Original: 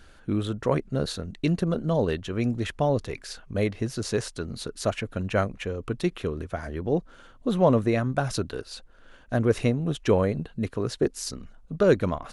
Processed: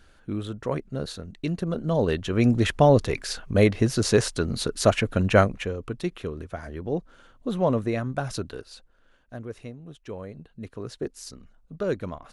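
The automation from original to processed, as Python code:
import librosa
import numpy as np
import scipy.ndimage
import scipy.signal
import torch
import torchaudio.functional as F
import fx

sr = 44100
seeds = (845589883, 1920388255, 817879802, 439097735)

y = fx.gain(x, sr, db=fx.line((1.54, -4.0), (2.54, 7.0), (5.37, 7.0), (5.93, -3.0), (8.51, -3.0), (9.58, -16.0), (10.13, -16.0), (10.81, -7.5)))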